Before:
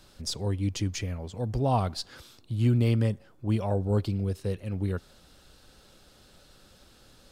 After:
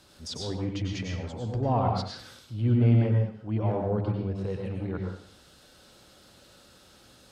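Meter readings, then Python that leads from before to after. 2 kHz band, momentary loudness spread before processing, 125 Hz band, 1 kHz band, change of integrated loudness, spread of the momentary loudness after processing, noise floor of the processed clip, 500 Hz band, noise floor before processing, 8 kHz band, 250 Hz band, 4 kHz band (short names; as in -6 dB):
0.0 dB, 11 LU, +1.0 dB, +1.5 dB, +0.5 dB, 15 LU, -56 dBFS, +0.5 dB, -58 dBFS, n/a, +1.0 dB, -1.5 dB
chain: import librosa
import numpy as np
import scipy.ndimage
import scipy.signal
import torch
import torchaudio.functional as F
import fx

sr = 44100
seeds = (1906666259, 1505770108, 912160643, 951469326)

y = fx.env_lowpass_down(x, sr, base_hz=1900.0, full_db=-23.5)
y = scipy.signal.sosfilt(scipy.signal.butter(2, 60.0, 'highpass', fs=sr, output='sos'), y)
y = fx.hum_notches(y, sr, base_hz=50, count=4)
y = fx.transient(y, sr, attack_db=-7, sustain_db=-1)
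y = fx.rev_plate(y, sr, seeds[0], rt60_s=0.52, hf_ratio=0.95, predelay_ms=85, drr_db=0.5)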